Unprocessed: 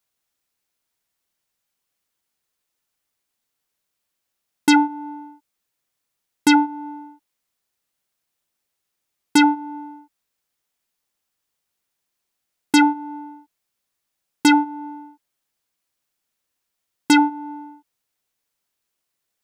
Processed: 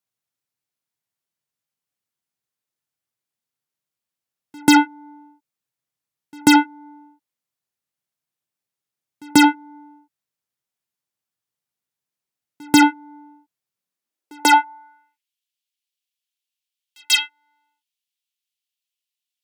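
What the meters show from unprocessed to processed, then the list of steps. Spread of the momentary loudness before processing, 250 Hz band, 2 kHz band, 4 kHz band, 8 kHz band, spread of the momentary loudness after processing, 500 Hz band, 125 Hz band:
19 LU, 0.0 dB, +3.0 dB, +5.0 dB, +4.0 dB, 12 LU, +1.5 dB, can't be measured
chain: echo ahead of the sound 138 ms −16 dB
harmonic generator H 5 −36 dB, 7 −14 dB, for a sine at −4.5 dBFS
high-pass filter sweep 120 Hz → 3,000 Hz, 0:13.73–0:15.29
level +1 dB

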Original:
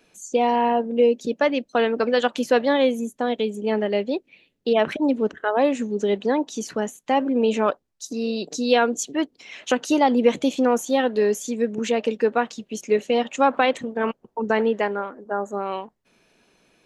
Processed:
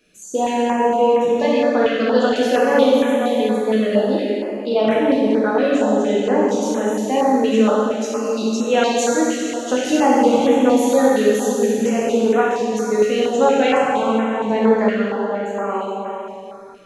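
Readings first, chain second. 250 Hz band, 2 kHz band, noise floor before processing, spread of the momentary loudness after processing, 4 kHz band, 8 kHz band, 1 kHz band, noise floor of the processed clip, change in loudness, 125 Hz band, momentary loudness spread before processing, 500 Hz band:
+6.5 dB, +3.0 dB, −68 dBFS, 8 LU, +3.0 dB, +5.5 dB, +4.0 dB, −33 dBFS, +5.0 dB, can't be measured, 9 LU, +5.5 dB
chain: dense smooth reverb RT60 3.1 s, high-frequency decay 0.95×, DRR −7 dB
notch on a step sequencer 4.3 Hz 880–4,700 Hz
level −1.5 dB

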